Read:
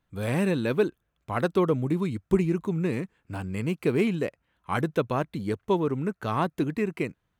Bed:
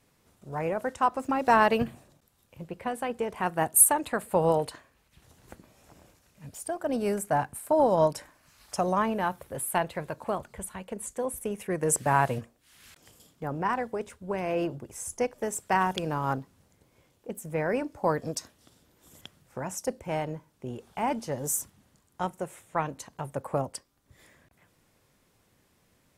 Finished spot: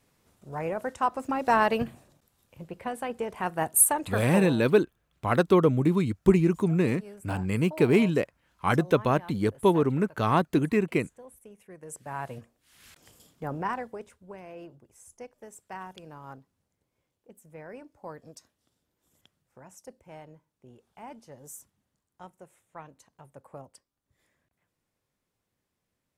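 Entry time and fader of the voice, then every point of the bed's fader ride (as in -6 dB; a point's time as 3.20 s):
3.95 s, +3.0 dB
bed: 4.31 s -1.5 dB
4.54 s -17.5 dB
11.89 s -17.5 dB
12.82 s -0.5 dB
13.54 s -0.5 dB
14.54 s -15.5 dB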